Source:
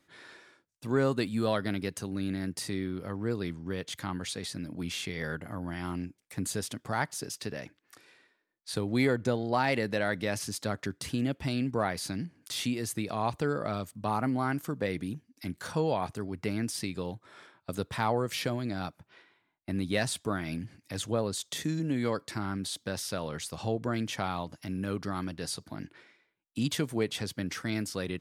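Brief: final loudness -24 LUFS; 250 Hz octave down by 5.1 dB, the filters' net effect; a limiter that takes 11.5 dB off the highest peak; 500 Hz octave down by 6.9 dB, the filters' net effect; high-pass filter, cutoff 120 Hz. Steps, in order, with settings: high-pass 120 Hz; peaking EQ 250 Hz -4 dB; peaking EQ 500 Hz -7.5 dB; trim +15 dB; peak limiter -12 dBFS

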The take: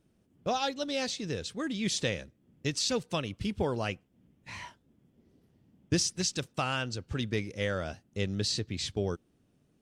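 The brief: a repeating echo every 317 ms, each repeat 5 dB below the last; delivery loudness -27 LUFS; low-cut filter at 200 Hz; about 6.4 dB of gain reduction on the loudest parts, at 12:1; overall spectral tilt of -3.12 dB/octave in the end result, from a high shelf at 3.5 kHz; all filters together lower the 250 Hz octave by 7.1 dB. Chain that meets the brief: high-pass 200 Hz; peaking EQ 250 Hz -7 dB; treble shelf 3.5 kHz -6.5 dB; compression 12:1, threshold -34 dBFS; feedback delay 317 ms, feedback 56%, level -5 dB; trim +12 dB

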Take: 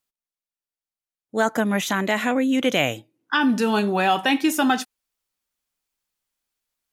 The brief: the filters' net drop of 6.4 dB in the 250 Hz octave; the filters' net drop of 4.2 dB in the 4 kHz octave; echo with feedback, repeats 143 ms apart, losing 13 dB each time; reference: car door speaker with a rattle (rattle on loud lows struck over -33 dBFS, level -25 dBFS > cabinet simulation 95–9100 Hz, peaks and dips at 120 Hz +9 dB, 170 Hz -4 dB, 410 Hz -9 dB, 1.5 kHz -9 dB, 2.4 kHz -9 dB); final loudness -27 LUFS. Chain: peaking EQ 250 Hz -6 dB; peaking EQ 4 kHz -3 dB; feedback delay 143 ms, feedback 22%, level -13 dB; rattle on loud lows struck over -33 dBFS, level -25 dBFS; cabinet simulation 95–9100 Hz, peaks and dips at 120 Hz +9 dB, 170 Hz -4 dB, 410 Hz -9 dB, 1.5 kHz -9 dB, 2.4 kHz -9 dB; trim -1 dB

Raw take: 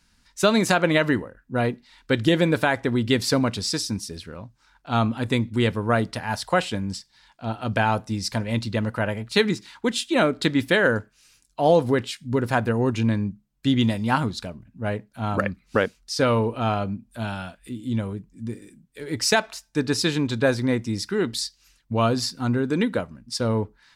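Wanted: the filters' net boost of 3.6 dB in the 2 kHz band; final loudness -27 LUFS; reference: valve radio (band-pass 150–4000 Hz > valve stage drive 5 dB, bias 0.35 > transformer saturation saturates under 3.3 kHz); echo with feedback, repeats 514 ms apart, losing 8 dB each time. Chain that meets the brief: band-pass 150–4000 Hz; peaking EQ 2 kHz +5 dB; feedback delay 514 ms, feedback 40%, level -8 dB; valve stage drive 5 dB, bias 0.35; transformer saturation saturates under 3.3 kHz; trim +3 dB

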